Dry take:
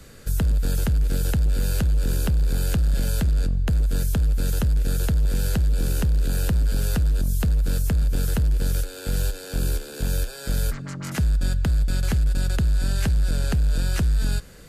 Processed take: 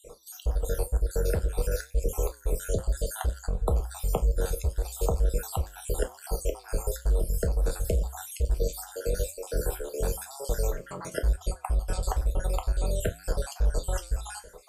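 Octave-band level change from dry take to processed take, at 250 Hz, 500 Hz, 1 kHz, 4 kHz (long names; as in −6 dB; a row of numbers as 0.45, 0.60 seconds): −11.5, +4.5, +2.5, −8.5 decibels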